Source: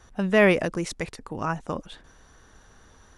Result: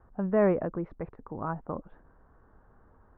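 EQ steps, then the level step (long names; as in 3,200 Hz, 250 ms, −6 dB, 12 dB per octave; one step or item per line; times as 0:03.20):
low-pass filter 1,300 Hz 24 dB per octave
−4.5 dB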